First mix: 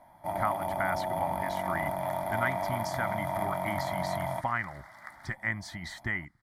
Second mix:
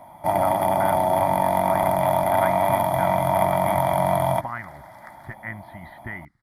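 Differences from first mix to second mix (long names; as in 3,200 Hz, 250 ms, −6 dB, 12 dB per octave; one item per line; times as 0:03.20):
speech: add Bessel low-pass filter 1,900 Hz, order 8
first sound +12.0 dB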